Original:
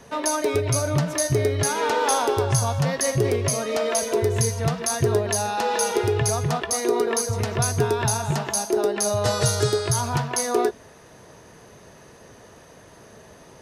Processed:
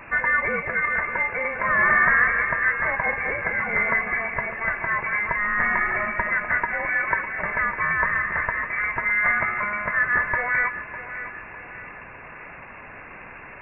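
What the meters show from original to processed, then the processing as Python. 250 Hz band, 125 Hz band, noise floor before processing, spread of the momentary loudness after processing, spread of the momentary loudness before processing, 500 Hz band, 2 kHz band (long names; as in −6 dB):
−10.5 dB, −17.0 dB, −48 dBFS, 20 LU, 3 LU, −11.5 dB, +14.0 dB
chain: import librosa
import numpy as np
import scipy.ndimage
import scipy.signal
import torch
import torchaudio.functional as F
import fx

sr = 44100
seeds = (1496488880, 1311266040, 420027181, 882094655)

y = scipy.signal.sosfilt(scipy.signal.butter(4, 740.0, 'highpass', fs=sr, output='sos'), x)
y = y + 0.48 * np.pad(y, (int(1.9 * sr / 1000.0), 0))[:len(y)]
y = fx.dmg_noise_colour(y, sr, seeds[0], colour='white', level_db=-42.0)
y = fx.echo_feedback(y, sr, ms=603, feedback_pct=46, wet_db=-12.5)
y = fx.freq_invert(y, sr, carrier_hz=2700)
y = F.gain(torch.from_numpy(y), 7.0).numpy()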